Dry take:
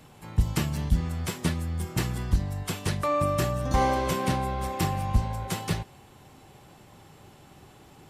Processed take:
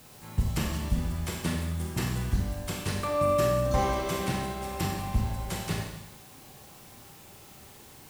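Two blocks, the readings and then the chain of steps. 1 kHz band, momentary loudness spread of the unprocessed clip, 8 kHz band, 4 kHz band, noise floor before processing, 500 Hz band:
-3.0 dB, 7 LU, -1.0 dB, -1.0 dB, -53 dBFS, +1.5 dB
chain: added noise white -52 dBFS; Schroeder reverb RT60 1 s, combs from 29 ms, DRR 0.5 dB; trim -4 dB

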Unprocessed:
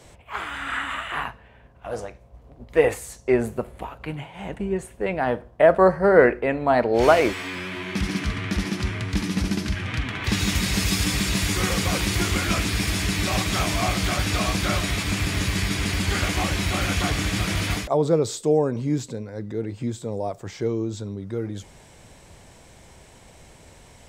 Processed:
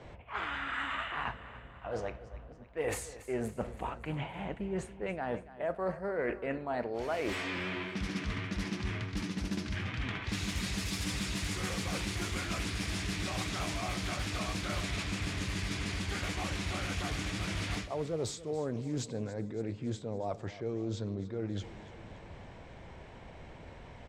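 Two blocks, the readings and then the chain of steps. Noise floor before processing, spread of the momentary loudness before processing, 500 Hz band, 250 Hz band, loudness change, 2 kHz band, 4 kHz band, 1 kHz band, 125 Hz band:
-50 dBFS, 14 LU, -15.0 dB, -11.0 dB, -12.5 dB, -11.0 dB, -11.5 dB, -12.5 dB, -11.0 dB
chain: level-controlled noise filter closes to 2.4 kHz, open at -17.5 dBFS; reverse; compression 6:1, threshold -33 dBFS, peak gain reduction 21.5 dB; reverse; feedback delay 282 ms, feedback 57%, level -16.5 dB; loudspeaker Doppler distortion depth 0.2 ms

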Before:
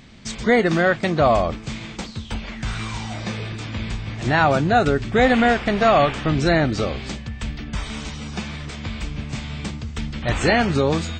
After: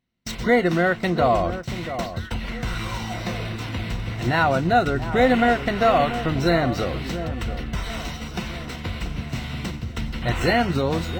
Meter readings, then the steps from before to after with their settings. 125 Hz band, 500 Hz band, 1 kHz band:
-1.5 dB, -2.0 dB, -1.0 dB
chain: median filter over 5 samples; rippled EQ curve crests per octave 2, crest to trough 7 dB; in parallel at +1.5 dB: compression, threshold -28 dBFS, peak gain reduction 17.5 dB; on the sum: gate -27 dBFS, range -35 dB; echo whose repeats swap between lows and highs 684 ms, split 1.4 kHz, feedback 55%, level -11 dB; trim -5 dB

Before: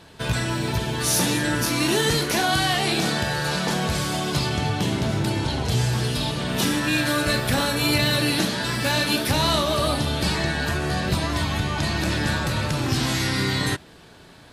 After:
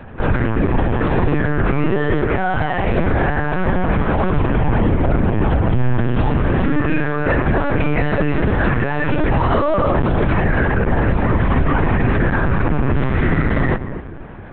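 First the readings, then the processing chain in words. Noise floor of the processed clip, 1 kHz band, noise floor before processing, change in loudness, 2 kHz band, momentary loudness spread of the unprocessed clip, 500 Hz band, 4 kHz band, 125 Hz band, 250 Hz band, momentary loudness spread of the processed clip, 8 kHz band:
-29 dBFS, +5.5 dB, -48 dBFS, +4.5 dB, +2.5 dB, 4 LU, +7.0 dB, -14.5 dB, +7.0 dB, +6.5 dB, 2 LU, under -40 dB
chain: low-pass 2.1 kHz 24 dB/octave; bass shelf 500 Hz +4.5 dB; on a send: filtered feedback delay 241 ms, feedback 39%, low-pass 1.2 kHz, level -15 dB; on the sum: LPC vocoder at 8 kHz pitch kept; loudness maximiser +17 dB; trim -6.5 dB

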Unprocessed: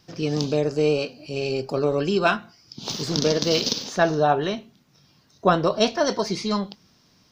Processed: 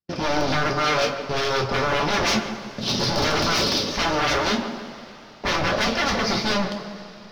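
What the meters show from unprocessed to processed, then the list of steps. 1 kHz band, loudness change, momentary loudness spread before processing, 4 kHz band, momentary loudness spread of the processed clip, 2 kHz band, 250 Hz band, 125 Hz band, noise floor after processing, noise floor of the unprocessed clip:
+2.5 dB, +1.0 dB, 9 LU, +4.5 dB, 12 LU, +6.5 dB, -1.0 dB, -0.5 dB, -43 dBFS, -60 dBFS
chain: distance through air 180 m; waveshaping leveller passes 3; in parallel at -8 dB: saturation -19 dBFS, distortion -9 dB; on the sum: rotary cabinet horn 5.5 Hz; gate -34 dBFS, range -27 dB; wavefolder -17.5 dBFS; tape echo 150 ms, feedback 60%, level -6 dB, low-pass 1.4 kHz; vibrato 2.1 Hz 13 cents; resonant high shelf 6.7 kHz -7 dB, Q 3; two-slope reverb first 0.23 s, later 4.1 s, from -22 dB, DRR 1 dB; trim -2.5 dB

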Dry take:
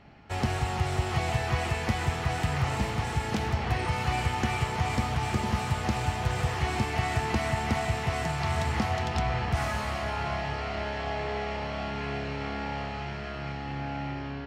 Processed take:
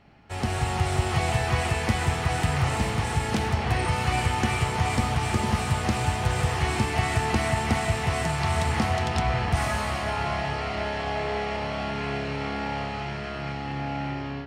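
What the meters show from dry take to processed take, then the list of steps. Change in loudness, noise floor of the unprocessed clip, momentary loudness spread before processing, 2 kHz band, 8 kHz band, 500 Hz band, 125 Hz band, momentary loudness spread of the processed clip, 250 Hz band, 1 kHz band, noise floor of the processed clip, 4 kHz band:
+3.5 dB, -36 dBFS, 6 LU, +3.5 dB, +6.0 dB, +3.5 dB, +3.5 dB, 6 LU, +3.5 dB, +3.5 dB, -33 dBFS, +4.0 dB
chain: level rider gain up to 6 dB; peaking EQ 9 kHz +7.5 dB 0.27 oct; de-hum 66.79 Hz, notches 35; trim -2 dB

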